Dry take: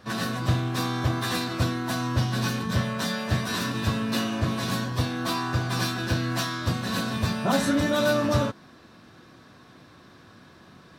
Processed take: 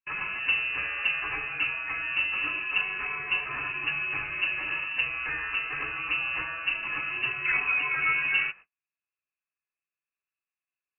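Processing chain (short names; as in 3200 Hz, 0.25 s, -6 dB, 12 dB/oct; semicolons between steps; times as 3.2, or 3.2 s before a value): gate -40 dBFS, range -42 dB; flange 0.52 Hz, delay 4 ms, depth 6.5 ms, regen -44%; inverted band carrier 2800 Hz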